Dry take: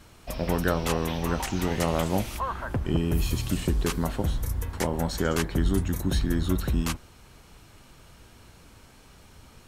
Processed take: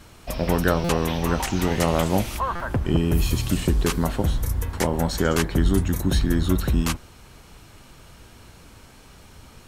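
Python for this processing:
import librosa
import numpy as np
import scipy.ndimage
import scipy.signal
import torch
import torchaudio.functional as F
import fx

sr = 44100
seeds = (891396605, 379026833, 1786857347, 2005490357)

y = fx.buffer_glitch(x, sr, at_s=(0.84, 2.55), block=256, repeats=8)
y = y * librosa.db_to_amplitude(4.5)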